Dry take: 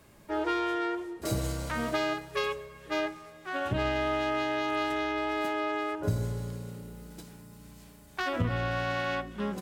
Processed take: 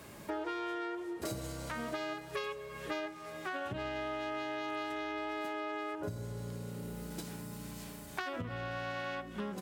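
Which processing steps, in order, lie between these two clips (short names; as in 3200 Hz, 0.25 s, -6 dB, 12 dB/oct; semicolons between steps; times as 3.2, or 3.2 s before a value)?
compressor 6:1, threshold -44 dBFS, peak gain reduction 19.5 dB; HPF 110 Hz 6 dB/oct; gain +7.5 dB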